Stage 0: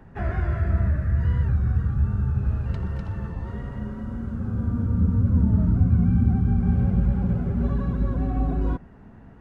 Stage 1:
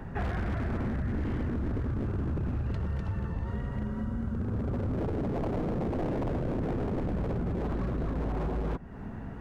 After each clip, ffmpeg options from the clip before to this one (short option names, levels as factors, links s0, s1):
-af "aeval=exprs='0.075*(abs(mod(val(0)/0.075+3,4)-2)-1)':c=same,acompressor=threshold=0.01:ratio=3,volume=2.37"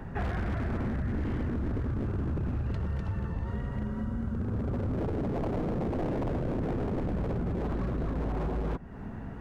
-af anull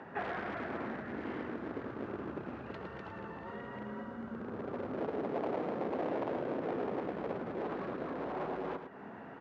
-af "highpass=370,lowpass=3600,aecho=1:1:109:0.376"